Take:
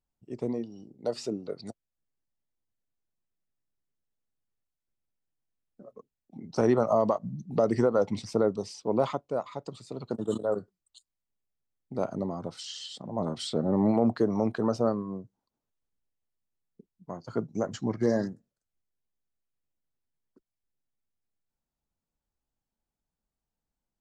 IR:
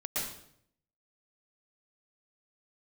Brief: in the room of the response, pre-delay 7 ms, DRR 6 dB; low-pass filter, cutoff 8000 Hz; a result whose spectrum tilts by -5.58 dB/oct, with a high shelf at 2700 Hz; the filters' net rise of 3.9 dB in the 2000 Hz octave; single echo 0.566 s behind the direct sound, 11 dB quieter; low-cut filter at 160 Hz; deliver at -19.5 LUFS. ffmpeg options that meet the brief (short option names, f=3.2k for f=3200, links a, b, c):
-filter_complex "[0:a]highpass=160,lowpass=8k,equalizer=f=2k:t=o:g=6.5,highshelf=f=2.7k:g=-3.5,aecho=1:1:566:0.282,asplit=2[a][b];[1:a]atrim=start_sample=2205,adelay=7[c];[b][c]afir=irnorm=-1:irlink=0,volume=-11.5dB[d];[a][d]amix=inputs=2:normalize=0,volume=10dB"